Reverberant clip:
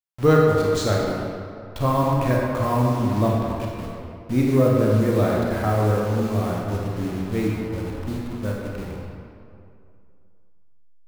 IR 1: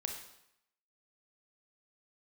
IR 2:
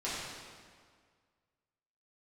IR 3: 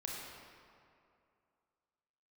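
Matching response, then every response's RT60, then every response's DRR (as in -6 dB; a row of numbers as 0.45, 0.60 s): 3; 0.80, 1.9, 2.5 s; 2.5, -10.5, -3.0 dB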